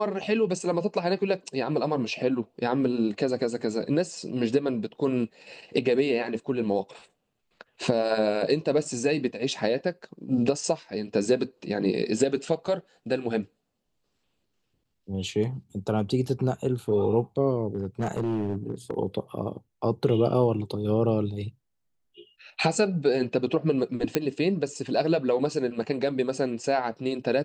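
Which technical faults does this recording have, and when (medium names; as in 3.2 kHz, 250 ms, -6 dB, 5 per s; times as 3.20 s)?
17.75–18.97 s: clipped -23 dBFS
24.15 s: pop -8 dBFS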